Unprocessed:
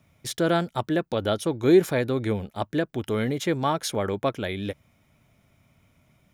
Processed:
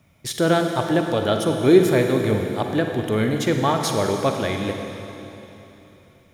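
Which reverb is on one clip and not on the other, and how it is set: Schroeder reverb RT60 3.3 s, DRR 3.5 dB; gain +3.5 dB

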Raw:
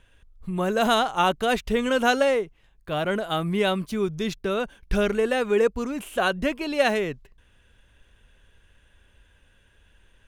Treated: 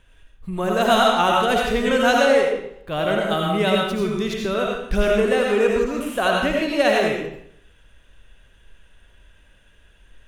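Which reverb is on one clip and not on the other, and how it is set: digital reverb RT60 0.7 s, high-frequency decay 0.9×, pre-delay 45 ms, DRR -1.5 dB; gain +1 dB

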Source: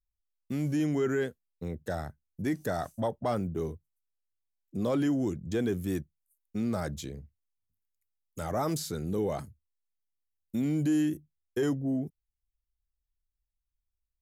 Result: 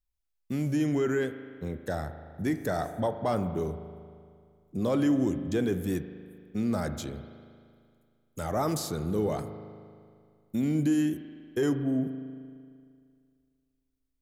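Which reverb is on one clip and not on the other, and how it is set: spring tank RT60 2.2 s, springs 38 ms, chirp 50 ms, DRR 9.5 dB; gain +1.5 dB

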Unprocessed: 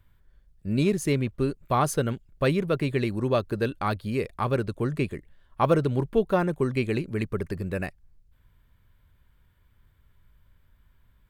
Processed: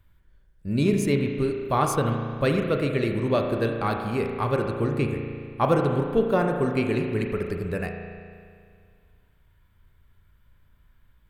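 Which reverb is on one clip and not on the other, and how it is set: spring tank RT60 2.1 s, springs 35 ms, chirp 65 ms, DRR 3 dB

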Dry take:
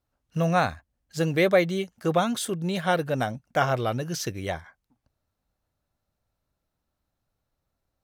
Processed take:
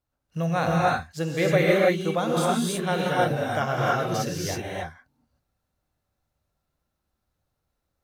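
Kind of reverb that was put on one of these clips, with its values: non-linear reverb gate 0.34 s rising, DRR -4.5 dB; gain -4 dB

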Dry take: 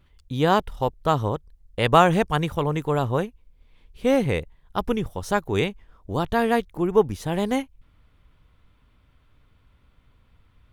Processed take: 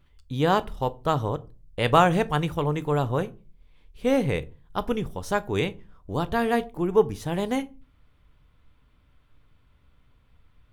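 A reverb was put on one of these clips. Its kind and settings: shoebox room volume 150 m³, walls furnished, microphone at 0.36 m; gain -2.5 dB

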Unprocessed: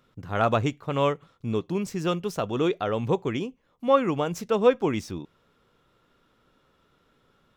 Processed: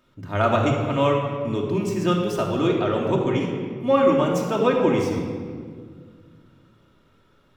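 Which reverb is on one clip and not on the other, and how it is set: shoebox room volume 2900 m³, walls mixed, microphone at 2.7 m

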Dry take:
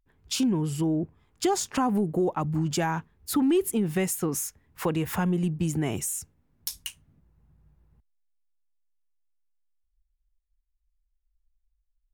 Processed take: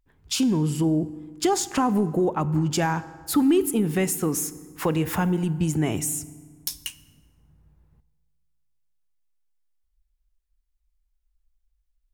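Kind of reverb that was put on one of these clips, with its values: FDN reverb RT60 1.6 s, low-frequency decay 1.25×, high-frequency decay 0.65×, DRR 14.5 dB; gain +3 dB

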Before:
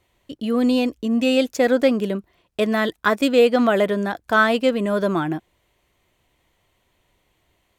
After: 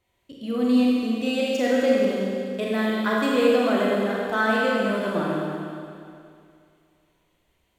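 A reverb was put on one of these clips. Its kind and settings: Schroeder reverb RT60 2.4 s, combs from 32 ms, DRR -4.5 dB; gain -9 dB

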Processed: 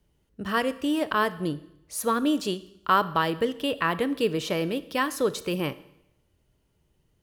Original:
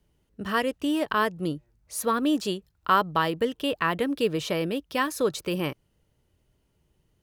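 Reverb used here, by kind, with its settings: Schroeder reverb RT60 0.8 s, combs from 27 ms, DRR 15 dB

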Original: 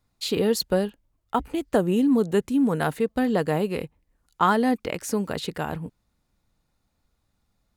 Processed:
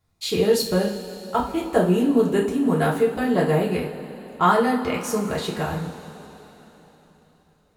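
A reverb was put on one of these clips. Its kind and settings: two-slope reverb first 0.35 s, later 4 s, from -18 dB, DRR -4.5 dB; gain -2.5 dB

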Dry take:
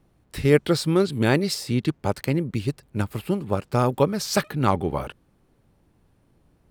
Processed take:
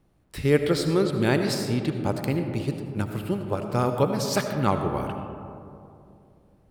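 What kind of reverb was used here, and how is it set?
digital reverb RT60 2.7 s, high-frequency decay 0.3×, pre-delay 40 ms, DRR 5.5 dB; gain -3 dB

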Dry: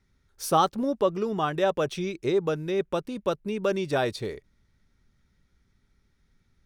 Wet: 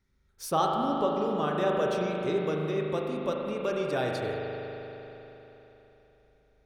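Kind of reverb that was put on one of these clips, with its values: spring tank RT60 3.7 s, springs 39 ms, chirp 60 ms, DRR -1 dB; gain -5.5 dB

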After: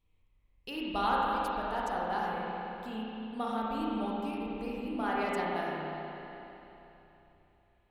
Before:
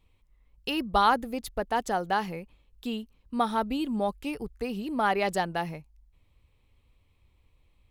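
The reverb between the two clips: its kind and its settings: spring tank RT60 3.3 s, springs 32/45 ms, chirp 55 ms, DRR -5.5 dB; gain -11.5 dB

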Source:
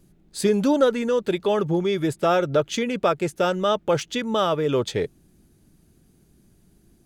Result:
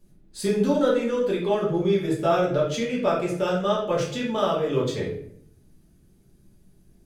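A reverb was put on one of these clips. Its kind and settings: shoebox room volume 110 m³, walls mixed, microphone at 1.4 m; gain -8.5 dB

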